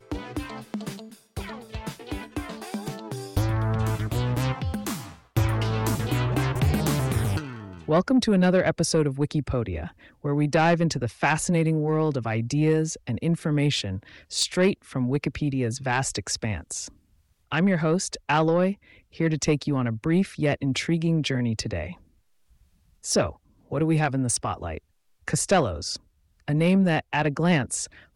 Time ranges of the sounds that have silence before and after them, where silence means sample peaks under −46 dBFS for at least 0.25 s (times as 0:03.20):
0:17.51–0:22.03
0:23.03–0:23.36
0:23.71–0:24.79
0:25.28–0:25.97